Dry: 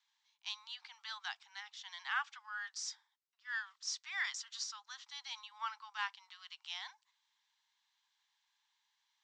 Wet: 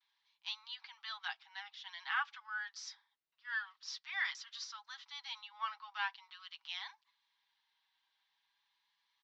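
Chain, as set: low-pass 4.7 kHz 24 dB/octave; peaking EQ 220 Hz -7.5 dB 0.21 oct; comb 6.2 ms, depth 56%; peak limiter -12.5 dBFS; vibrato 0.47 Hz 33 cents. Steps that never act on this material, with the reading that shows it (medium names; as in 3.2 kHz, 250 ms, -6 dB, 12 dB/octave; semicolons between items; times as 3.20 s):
peaking EQ 220 Hz: input has nothing below 640 Hz; peak limiter -12.5 dBFS: peak at its input -23.5 dBFS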